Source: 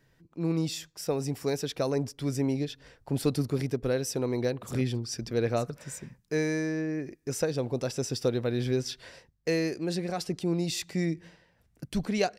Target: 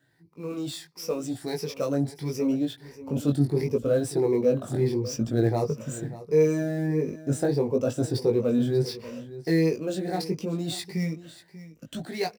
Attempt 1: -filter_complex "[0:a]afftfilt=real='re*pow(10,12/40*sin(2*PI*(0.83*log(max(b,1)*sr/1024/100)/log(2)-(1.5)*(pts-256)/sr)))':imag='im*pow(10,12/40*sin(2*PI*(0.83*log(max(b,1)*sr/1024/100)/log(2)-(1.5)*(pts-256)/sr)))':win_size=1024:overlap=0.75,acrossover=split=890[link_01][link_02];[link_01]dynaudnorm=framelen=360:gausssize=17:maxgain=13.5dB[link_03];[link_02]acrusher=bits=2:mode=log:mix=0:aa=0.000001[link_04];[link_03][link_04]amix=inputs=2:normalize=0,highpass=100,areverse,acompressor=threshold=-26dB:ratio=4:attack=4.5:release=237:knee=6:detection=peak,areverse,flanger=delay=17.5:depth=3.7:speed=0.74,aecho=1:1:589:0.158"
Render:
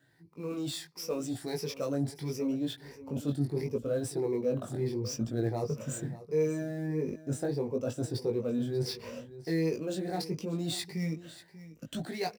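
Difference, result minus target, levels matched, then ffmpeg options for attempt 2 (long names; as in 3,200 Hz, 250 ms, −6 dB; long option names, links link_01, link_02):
downward compressor: peak gain reduction +8 dB
-filter_complex "[0:a]afftfilt=real='re*pow(10,12/40*sin(2*PI*(0.83*log(max(b,1)*sr/1024/100)/log(2)-(1.5)*(pts-256)/sr)))':imag='im*pow(10,12/40*sin(2*PI*(0.83*log(max(b,1)*sr/1024/100)/log(2)-(1.5)*(pts-256)/sr)))':win_size=1024:overlap=0.75,acrossover=split=890[link_01][link_02];[link_01]dynaudnorm=framelen=360:gausssize=17:maxgain=13.5dB[link_03];[link_02]acrusher=bits=2:mode=log:mix=0:aa=0.000001[link_04];[link_03][link_04]amix=inputs=2:normalize=0,highpass=100,areverse,acompressor=threshold=-15dB:ratio=4:attack=4.5:release=237:knee=6:detection=peak,areverse,flanger=delay=17.5:depth=3.7:speed=0.74,aecho=1:1:589:0.158"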